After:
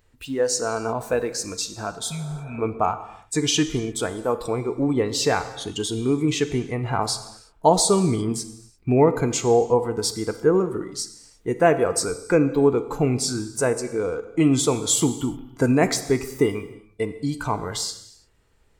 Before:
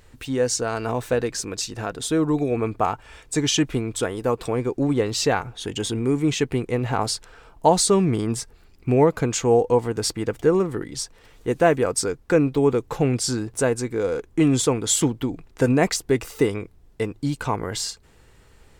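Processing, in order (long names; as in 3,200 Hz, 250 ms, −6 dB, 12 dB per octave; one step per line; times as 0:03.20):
noise reduction from a noise print of the clip's start 11 dB
reverb whose tail is shaped and stops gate 370 ms falling, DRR 10 dB
healed spectral selection 0:02.07–0:02.56, 240–1,900 Hz before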